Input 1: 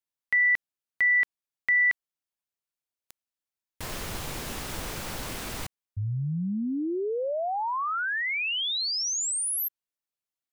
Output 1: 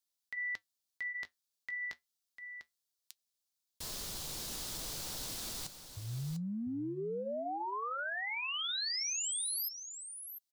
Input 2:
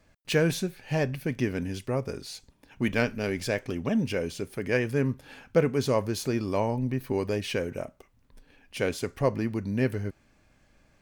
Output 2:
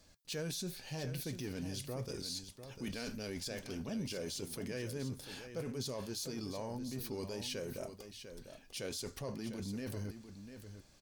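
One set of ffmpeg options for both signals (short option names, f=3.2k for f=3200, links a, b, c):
-af "highshelf=f=3.1k:t=q:w=1.5:g=9,areverse,acompressor=threshold=-33dB:ratio=6:attack=0.54:release=93:knee=1:detection=peak,areverse,flanger=delay=3.6:depth=3.3:regen=-75:speed=0.3:shape=triangular,aecho=1:1:698:0.316,volume=1dB"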